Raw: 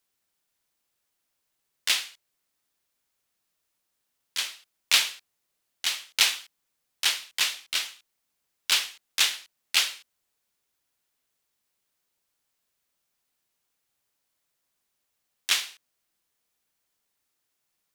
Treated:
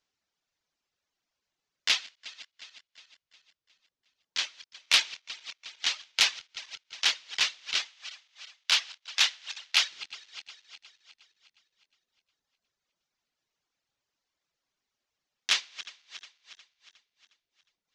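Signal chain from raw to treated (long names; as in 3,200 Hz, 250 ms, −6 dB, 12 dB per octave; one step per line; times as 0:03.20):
feedback delay that plays each chunk backwards 180 ms, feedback 69%, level −13 dB
0:07.89–0:09.91: high-pass filter 520 Hz 24 dB per octave
reverb reduction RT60 1.1 s
Butterworth low-pass 6,500 Hz 36 dB per octave
saturating transformer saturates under 3,800 Hz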